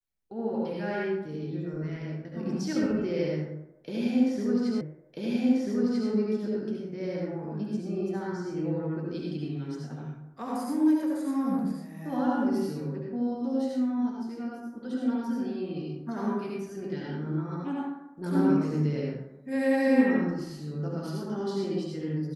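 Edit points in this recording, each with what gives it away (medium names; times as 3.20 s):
4.81 s: repeat of the last 1.29 s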